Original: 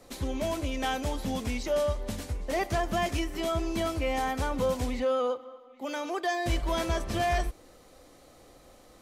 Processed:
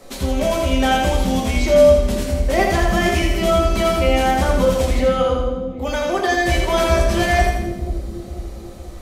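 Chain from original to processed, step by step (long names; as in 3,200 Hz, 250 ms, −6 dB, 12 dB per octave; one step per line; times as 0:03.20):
mains-hum notches 50/100/150/200/250 Hz
on a send: echo with a time of its own for lows and highs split 430 Hz, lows 489 ms, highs 82 ms, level −4 dB
on the sum: rectangular room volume 170 cubic metres, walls furnished, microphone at 1.1 metres
level +8.5 dB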